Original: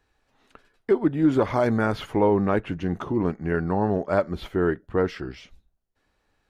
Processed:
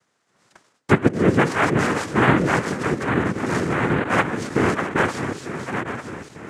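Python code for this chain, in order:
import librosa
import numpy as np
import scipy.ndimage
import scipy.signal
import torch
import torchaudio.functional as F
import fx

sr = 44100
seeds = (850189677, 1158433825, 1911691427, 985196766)

y = fx.reverse_delay_fb(x, sr, ms=449, feedback_pct=68, wet_db=-8)
y = fx.noise_vocoder(y, sr, seeds[0], bands=3)
y = y * 10.0 ** (2.5 / 20.0)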